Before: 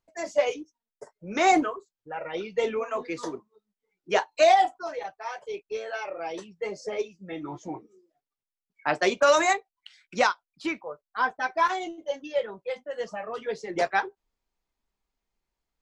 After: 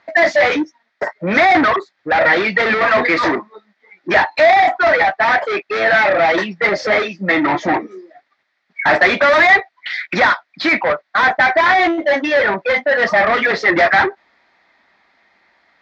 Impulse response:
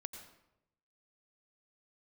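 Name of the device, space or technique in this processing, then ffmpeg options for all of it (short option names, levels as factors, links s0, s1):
overdrive pedal into a guitar cabinet: -filter_complex "[0:a]asplit=2[s0][s1];[s1]highpass=f=720:p=1,volume=79.4,asoftclip=type=tanh:threshold=0.398[s2];[s0][s2]amix=inputs=2:normalize=0,lowpass=f=4000:p=1,volume=0.501,highpass=81,equalizer=f=130:t=q:w=4:g=-5,equalizer=f=440:t=q:w=4:g=-8,equalizer=f=650:t=q:w=4:g=3,equalizer=f=1000:t=q:w=4:g=-3,equalizer=f=1900:t=q:w=4:g=10,equalizer=f=2900:t=q:w=4:g=-9,lowpass=f=4200:w=0.5412,lowpass=f=4200:w=1.3066,volume=1.26"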